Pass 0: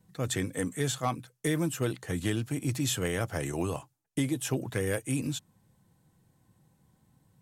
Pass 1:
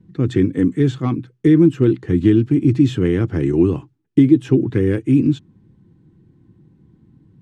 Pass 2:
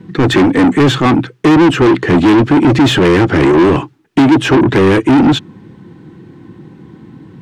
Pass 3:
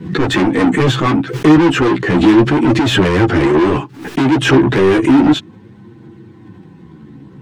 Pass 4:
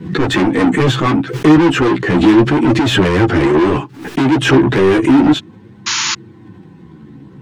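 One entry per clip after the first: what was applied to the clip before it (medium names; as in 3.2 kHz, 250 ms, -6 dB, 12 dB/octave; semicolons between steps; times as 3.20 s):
low-pass 3.1 kHz 12 dB/octave; resonant low shelf 460 Hz +9.5 dB, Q 3; trim +4 dB
overdrive pedal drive 33 dB, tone 3.1 kHz, clips at -1 dBFS
chorus voices 2, 0.33 Hz, delay 12 ms, depth 3.4 ms; swell ahead of each attack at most 97 dB/s
painted sound noise, 5.86–6.15 s, 850–7100 Hz -17 dBFS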